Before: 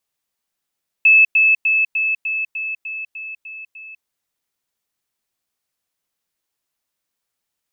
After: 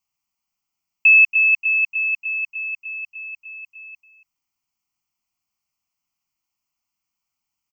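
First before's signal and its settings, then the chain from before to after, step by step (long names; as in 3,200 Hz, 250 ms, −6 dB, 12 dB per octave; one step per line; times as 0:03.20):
level staircase 2,610 Hz −7 dBFS, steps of −3 dB, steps 10, 0.20 s 0.10 s
phaser with its sweep stopped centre 2,500 Hz, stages 8
single-tap delay 281 ms −15 dB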